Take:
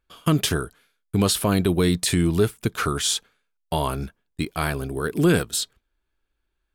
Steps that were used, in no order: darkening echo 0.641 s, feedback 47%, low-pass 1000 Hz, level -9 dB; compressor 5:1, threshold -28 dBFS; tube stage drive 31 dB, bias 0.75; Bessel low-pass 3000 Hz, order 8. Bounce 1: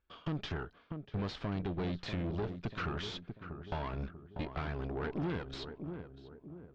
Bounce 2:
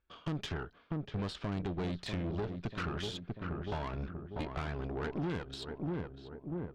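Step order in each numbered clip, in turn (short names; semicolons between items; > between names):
compressor > darkening echo > tube stage > Bessel low-pass; darkening echo > compressor > Bessel low-pass > tube stage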